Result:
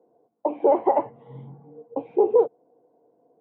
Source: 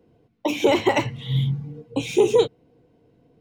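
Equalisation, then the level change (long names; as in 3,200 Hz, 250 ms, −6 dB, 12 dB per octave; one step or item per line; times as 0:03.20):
high-pass filter 420 Hz 12 dB per octave
transistor ladder low-pass 950 Hz, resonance 40%
+7.5 dB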